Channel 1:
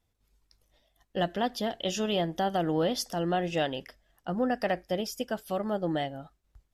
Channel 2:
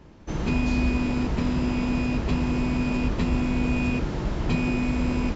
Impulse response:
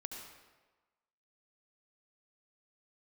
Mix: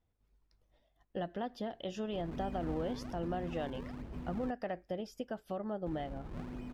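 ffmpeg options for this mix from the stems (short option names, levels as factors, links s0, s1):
-filter_complex "[0:a]acompressor=threshold=0.02:ratio=2.5,volume=0.75[s0];[1:a]acrusher=samples=39:mix=1:aa=0.000001:lfo=1:lforange=62.4:lforate=1.2,adelay=1850,volume=0.112,asplit=3[s1][s2][s3];[s1]atrim=end=4.51,asetpts=PTS-STARTPTS,afade=t=out:st=4.506:d=0.004:c=hsin[s4];[s2]atrim=start=4.51:end=5.86,asetpts=PTS-STARTPTS,volume=0[s5];[s3]atrim=start=5.86,asetpts=PTS-STARTPTS,afade=t=in:d=0.004:c=hsin[s6];[s4][s5][s6]concat=n=3:v=0:a=1[s7];[s0][s7]amix=inputs=2:normalize=0,lowpass=f=1400:p=1"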